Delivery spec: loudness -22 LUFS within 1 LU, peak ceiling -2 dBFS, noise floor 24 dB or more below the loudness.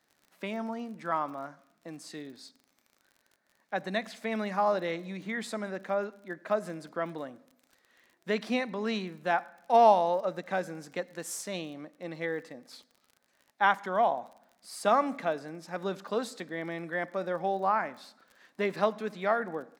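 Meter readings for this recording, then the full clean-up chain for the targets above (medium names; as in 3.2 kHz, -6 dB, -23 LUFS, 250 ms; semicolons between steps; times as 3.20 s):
tick rate 32 per s; loudness -31.0 LUFS; peak level -9.5 dBFS; loudness target -22.0 LUFS
-> de-click; trim +9 dB; peak limiter -2 dBFS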